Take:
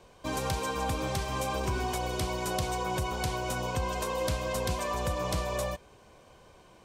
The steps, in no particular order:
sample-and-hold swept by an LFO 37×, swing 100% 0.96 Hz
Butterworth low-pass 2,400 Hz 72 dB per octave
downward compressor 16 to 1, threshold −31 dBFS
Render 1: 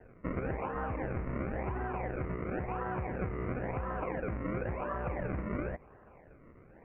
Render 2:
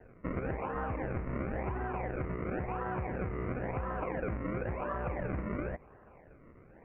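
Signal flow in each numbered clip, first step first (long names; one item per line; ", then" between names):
downward compressor, then sample-and-hold swept by an LFO, then Butterworth low-pass
sample-and-hold swept by an LFO, then Butterworth low-pass, then downward compressor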